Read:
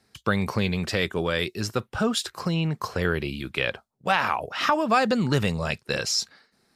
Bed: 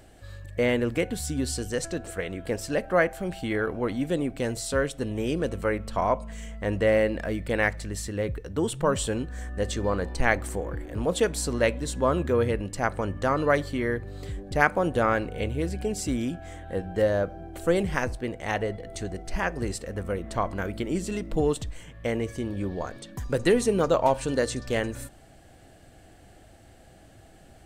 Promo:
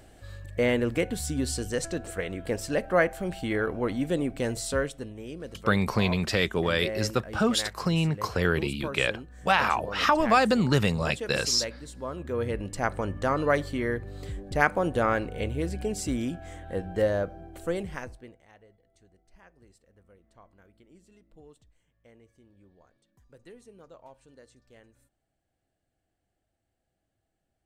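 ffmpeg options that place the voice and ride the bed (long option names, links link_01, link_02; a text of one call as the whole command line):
ffmpeg -i stem1.wav -i stem2.wav -filter_complex "[0:a]adelay=5400,volume=0dB[link_01];[1:a]volume=10dB,afade=type=out:start_time=4.68:duration=0.46:silence=0.266073,afade=type=in:start_time=12.16:duration=0.56:silence=0.298538,afade=type=out:start_time=17.03:duration=1.44:silence=0.0446684[link_02];[link_01][link_02]amix=inputs=2:normalize=0" out.wav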